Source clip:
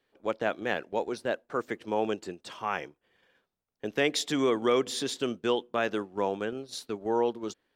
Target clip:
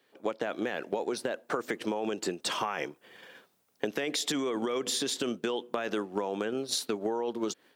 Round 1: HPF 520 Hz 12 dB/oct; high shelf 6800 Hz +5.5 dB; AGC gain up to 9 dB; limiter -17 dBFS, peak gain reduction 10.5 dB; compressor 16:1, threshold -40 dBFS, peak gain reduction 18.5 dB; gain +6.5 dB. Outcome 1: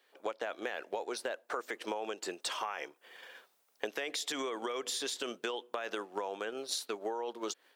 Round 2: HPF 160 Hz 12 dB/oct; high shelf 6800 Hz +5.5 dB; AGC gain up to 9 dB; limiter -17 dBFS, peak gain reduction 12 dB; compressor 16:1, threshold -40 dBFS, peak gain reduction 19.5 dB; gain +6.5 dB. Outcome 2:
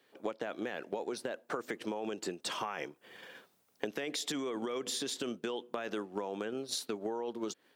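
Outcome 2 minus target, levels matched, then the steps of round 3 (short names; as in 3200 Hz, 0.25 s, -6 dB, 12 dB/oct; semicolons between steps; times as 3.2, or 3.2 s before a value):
compressor: peak gain reduction +5.5 dB
HPF 160 Hz 12 dB/oct; high shelf 6800 Hz +5.5 dB; AGC gain up to 9 dB; limiter -17 dBFS, peak gain reduction 12 dB; compressor 16:1, threshold -34 dBFS, peak gain reduction 13.5 dB; gain +6.5 dB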